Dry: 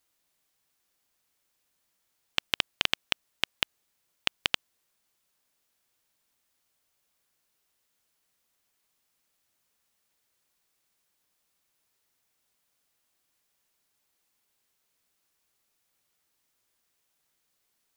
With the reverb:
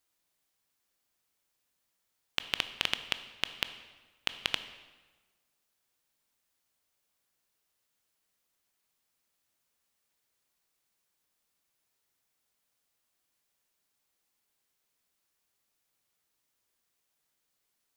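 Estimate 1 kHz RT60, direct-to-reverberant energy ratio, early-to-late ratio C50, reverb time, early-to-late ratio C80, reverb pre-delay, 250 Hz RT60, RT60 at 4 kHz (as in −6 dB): 1.3 s, 10.5 dB, 12.0 dB, 1.3 s, 13.5 dB, 16 ms, 1.4 s, 1.0 s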